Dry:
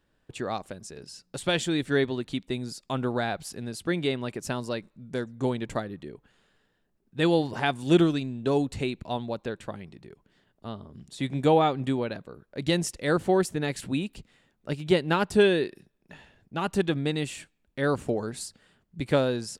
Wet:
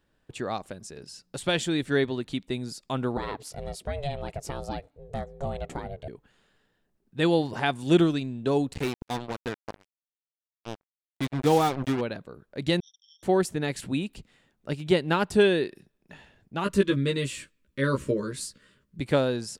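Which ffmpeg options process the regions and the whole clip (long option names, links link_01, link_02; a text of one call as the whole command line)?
ffmpeg -i in.wav -filter_complex "[0:a]asettb=1/sr,asplit=3[link_01][link_02][link_03];[link_01]atrim=end=3.174[link_04];[link_02]atrim=start=3.17:end=6.08,asetpts=PTS-STARTPTS,afade=type=in:duration=0.004:curve=qsin,afade=type=out:start_time=2.906:duration=0.004:curve=qsin,equalizer=frequency=400:width_type=o:width=0.92:gain=7.5,acompressor=threshold=-26dB:ratio=3:attack=3.2:release=140:knee=1:detection=peak,aeval=exprs='val(0)*sin(2*PI*280*n/s)':channel_layout=same[link_05];[link_03]atrim=start=6.076[link_06];[link_04][link_05]acrossfade=duration=0.004:curve1=hsin:curve2=qsin[link_07];[link_07][link_06]acrossfade=duration=0.004:curve1=qsin:curve2=hsin,asettb=1/sr,asplit=3[link_08][link_09][link_10];[link_08]atrim=end=8.734[link_11];[link_09]atrim=start=8.73:end=12.01,asetpts=PTS-STARTPTS,afade=type=in:duration=0.004:curve=qsin,afade=type=out:start_time=3.276:duration=0.004:curve=qsin,highshelf=frequency=3100:gain=-4,bandreject=frequency=600:width=5.9,acrusher=bits=4:mix=0:aa=0.5[link_12];[link_10]atrim=start=12.006[link_13];[link_11][link_12]acrossfade=duration=0.004:curve1=hsin:curve2=qsin[link_14];[link_14][link_13]acrossfade=duration=0.004:curve1=qsin:curve2=hsin,asettb=1/sr,asplit=3[link_15][link_16][link_17];[link_15]atrim=end=12.804[link_18];[link_16]atrim=start=12.8:end=13.23,asetpts=PTS-STARTPTS,afade=type=in:duration=0.004:curve=qsin,afade=type=out:start_time=0.426:duration=0.004:curve=qsin,asuperpass=centerf=4500:order=12:qfactor=7.8,aeval=exprs='val(0)*sin(2*PI*1100*n/s)':channel_layout=same[link_19];[link_17]atrim=start=13.226[link_20];[link_18][link_19]acrossfade=duration=0.004:curve1=hsin:curve2=qsin[link_21];[link_21][link_20]acrossfade=duration=0.004:curve1=qsin:curve2=hsin,asettb=1/sr,asplit=3[link_22][link_23][link_24];[link_22]atrim=end=16.644[link_25];[link_23]atrim=start=16.64:end=18.99,asetpts=PTS-STARTPTS,afade=type=in:duration=0.004:curve=qsin,afade=type=out:start_time=2.346:duration=0.004:curve=qsin,asuperstop=centerf=760:order=8:qfactor=2.3,asplit=2[link_26][link_27];[link_27]adelay=15,volume=-3dB[link_28];[link_26][link_28]amix=inputs=2:normalize=0,atrim=end_sample=103635[link_29];[link_24]atrim=start=18.986[link_30];[link_25][link_29]acrossfade=duration=0.004:curve1=hsin:curve2=qsin[link_31];[link_31][link_30]acrossfade=duration=0.004:curve1=qsin:curve2=hsin" out.wav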